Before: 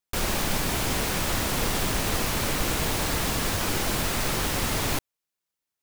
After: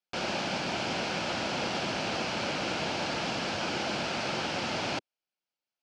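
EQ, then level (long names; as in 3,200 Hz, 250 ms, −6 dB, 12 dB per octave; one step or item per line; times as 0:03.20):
loudspeaker in its box 240–4,700 Hz, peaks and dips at 280 Hz −5 dB, 430 Hz −8 dB, 1,100 Hz −9 dB, 1,900 Hz −9 dB, 3,700 Hz −7 dB
+1.5 dB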